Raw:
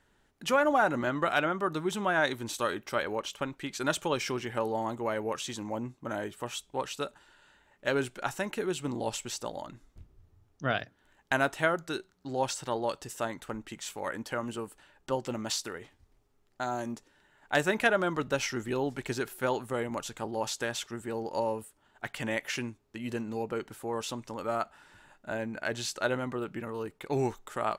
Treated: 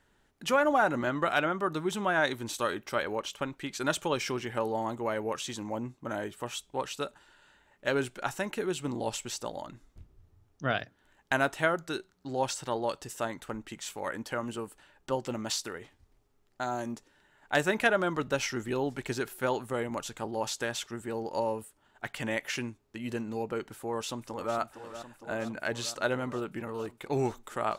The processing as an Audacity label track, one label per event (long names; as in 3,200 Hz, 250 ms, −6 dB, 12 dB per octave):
23.750000	24.560000	delay throw 460 ms, feedback 80%, level −11.5 dB